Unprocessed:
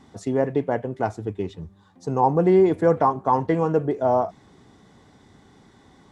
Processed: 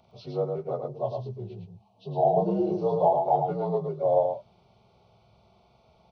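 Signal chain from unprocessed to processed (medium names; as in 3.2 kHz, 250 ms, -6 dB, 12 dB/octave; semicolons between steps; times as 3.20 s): frequency axis rescaled in octaves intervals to 84%; static phaser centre 690 Hz, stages 4; delay 110 ms -4.5 dB; 0.88–3.16 s: time-frequency box 1.1–2.5 kHz -11 dB; 2.17–3.36 s: doubling 30 ms -3 dB; trim -2 dB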